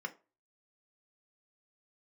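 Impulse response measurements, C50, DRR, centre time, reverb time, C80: 18.5 dB, 3.5 dB, 5 ms, 0.30 s, 24.5 dB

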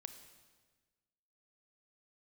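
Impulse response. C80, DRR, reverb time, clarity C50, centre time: 11.0 dB, 8.5 dB, 1.4 s, 9.5 dB, 17 ms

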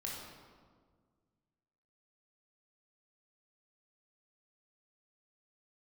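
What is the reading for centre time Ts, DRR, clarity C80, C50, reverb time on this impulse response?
84 ms, -3.5 dB, 2.5 dB, 0.0 dB, 1.7 s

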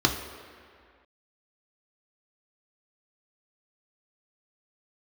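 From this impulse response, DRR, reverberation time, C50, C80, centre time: 2.5 dB, 2.1 s, 7.5 dB, 9.0 dB, 35 ms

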